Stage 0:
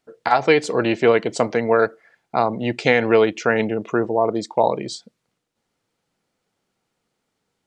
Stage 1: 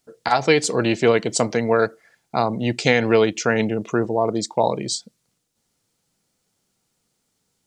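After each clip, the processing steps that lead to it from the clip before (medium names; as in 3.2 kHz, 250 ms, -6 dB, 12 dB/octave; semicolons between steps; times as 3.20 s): tone controls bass +6 dB, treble +13 dB; trim -2 dB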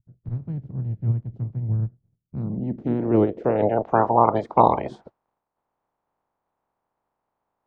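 spectral peaks clipped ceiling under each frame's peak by 27 dB; vibrato 2.7 Hz 71 cents; low-pass sweep 120 Hz -> 900 Hz, 2.07–4.07 s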